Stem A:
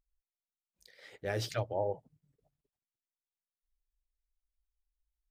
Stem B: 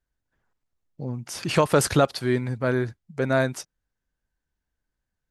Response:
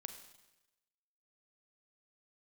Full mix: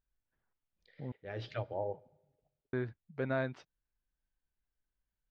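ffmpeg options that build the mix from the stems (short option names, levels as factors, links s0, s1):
-filter_complex "[0:a]volume=0.531,asplit=2[s0][s1];[s1]volume=0.335[s2];[1:a]alimiter=limit=0.316:level=0:latency=1:release=157,volume=0.299,asplit=3[s3][s4][s5];[s3]atrim=end=1.12,asetpts=PTS-STARTPTS,afade=t=out:st=1.116:d=0.004:c=hsin[s6];[s4]atrim=start=1.12:end=2.73,asetpts=PTS-STARTPTS,volume=0[s7];[s5]atrim=start=2.73,asetpts=PTS-STARTPTS,afade=t=in:d=0.004:c=hsin[s8];[s6][s7][s8]concat=n=3:v=0:a=1,asplit=2[s9][s10];[s10]apad=whole_len=233980[s11];[s0][s11]sidechaincompress=threshold=0.00282:ratio=8:attack=21:release=320[s12];[2:a]atrim=start_sample=2205[s13];[s2][s13]afir=irnorm=-1:irlink=0[s14];[s12][s9][s14]amix=inputs=3:normalize=0,lowpass=f=3600:w=0.5412,lowpass=f=3600:w=1.3066"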